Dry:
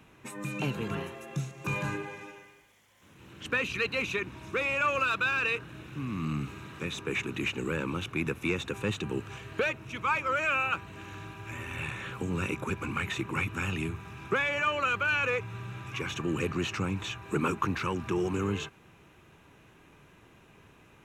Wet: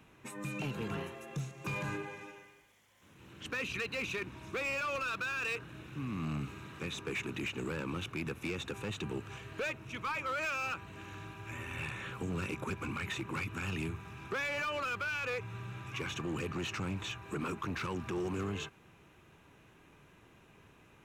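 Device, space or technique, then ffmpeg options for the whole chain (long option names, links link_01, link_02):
limiter into clipper: -af "alimiter=limit=-22.5dB:level=0:latency=1:release=84,asoftclip=type=hard:threshold=-28dB,volume=-3.5dB"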